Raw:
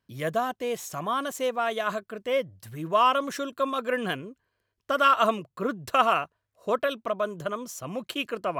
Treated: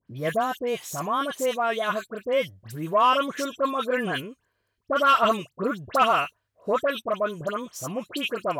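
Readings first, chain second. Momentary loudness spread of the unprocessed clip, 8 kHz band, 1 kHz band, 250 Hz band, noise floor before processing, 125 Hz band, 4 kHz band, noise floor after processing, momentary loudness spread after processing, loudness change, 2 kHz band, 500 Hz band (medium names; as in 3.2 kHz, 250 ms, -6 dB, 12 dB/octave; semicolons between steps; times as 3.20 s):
13 LU, +2.5 dB, +1.5 dB, +2.5 dB, -80 dBFS, +2.5 dB, +2.0 dB, -77 dBFS, 12 LU, +2.0 dB, +2.0 dB, +2.0 dB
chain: phase dispersion highs, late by 77 ms, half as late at 2 kHz; saturation -11 dBFS, distortion -23 dB; trim +2.5 dB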